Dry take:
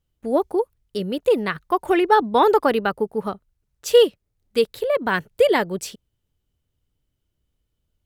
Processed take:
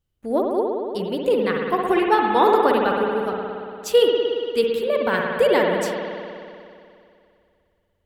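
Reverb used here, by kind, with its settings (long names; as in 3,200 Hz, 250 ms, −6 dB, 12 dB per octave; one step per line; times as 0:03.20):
spring reverb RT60 2.5 s, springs 57 ms, chirp 50 ms, DRR −0.5 dB
level −2.5 dB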